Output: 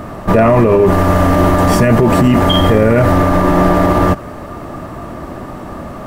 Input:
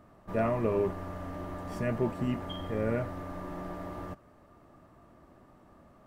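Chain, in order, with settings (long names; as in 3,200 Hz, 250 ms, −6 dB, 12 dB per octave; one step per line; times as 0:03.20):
0:00.86–0:03.12: high-shelf EQ 5,400 Hz +4.5 dB
boost into a limiter +31.5 dB
level −1 dB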